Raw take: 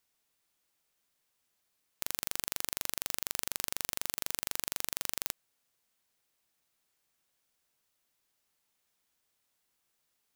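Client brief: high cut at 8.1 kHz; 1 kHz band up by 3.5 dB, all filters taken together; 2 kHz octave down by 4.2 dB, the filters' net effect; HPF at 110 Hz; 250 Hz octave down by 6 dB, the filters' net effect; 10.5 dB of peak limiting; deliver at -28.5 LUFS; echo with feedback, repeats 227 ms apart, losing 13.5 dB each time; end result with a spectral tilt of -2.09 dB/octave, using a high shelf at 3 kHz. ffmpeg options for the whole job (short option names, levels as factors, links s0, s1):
-af "highpass=110,lowpass=8100,equalizer=f=250:t=o:g=-8.5,equalizer=f=1000:t=o:g=7,equalizer=f=2000:t=o:g=-4.5,highshelf=f=3000:g=-7.5,alimiter=level_in=1.58:limit=0.0631:level=0:latency=1,volume=0.631,aecho=1:1:227|454:0.211|0.0444,volume=18.8"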